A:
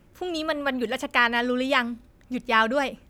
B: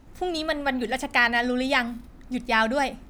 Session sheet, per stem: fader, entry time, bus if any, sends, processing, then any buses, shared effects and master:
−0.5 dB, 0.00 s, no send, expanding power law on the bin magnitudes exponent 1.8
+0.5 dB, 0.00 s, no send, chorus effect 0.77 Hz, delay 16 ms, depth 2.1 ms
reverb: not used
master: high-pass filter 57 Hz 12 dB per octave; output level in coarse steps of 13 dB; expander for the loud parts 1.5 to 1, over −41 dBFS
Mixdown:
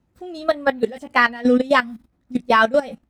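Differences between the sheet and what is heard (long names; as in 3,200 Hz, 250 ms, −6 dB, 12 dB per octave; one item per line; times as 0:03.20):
stem A −0.5 dB → +9.0 dB
stem B +0.5 dB → +7.0 dB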